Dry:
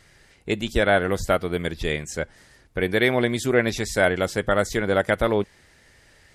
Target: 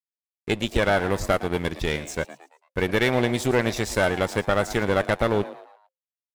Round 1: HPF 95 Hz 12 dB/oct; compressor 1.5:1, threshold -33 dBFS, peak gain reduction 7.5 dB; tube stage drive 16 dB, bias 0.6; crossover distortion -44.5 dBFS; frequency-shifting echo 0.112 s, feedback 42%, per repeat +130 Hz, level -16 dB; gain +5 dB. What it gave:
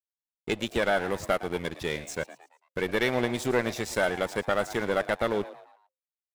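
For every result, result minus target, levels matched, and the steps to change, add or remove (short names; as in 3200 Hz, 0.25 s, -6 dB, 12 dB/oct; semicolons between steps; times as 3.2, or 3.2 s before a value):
125 Hz band -5.0 dB; compressor: peak gain reduction +3.5 dB
remove: HPF 95 Hz 12 dB/oct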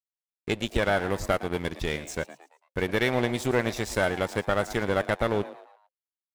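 compressor: peak gain reduction +3.5 dB
change: compressor 1.5:1, threshold -22 dBFS, peak gain reduction 3.5 dB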